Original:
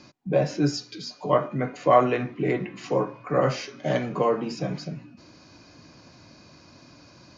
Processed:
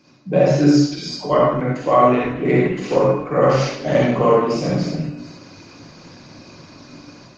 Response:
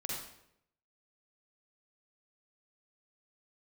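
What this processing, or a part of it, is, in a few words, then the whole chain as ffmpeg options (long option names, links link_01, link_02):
far-field microphone of a smart speaker: -filter_complex "[1:a]atrim=start_sample=2205[link_01];[0:a][link_01]afir=irnorm=-1:irlink=0,highpass=frequency=100:poles=1,dynaudnorm=framelen=110:gausssize=5:maxgain=9.5dB" -ar 48000 -c:a libopus -b:a 20k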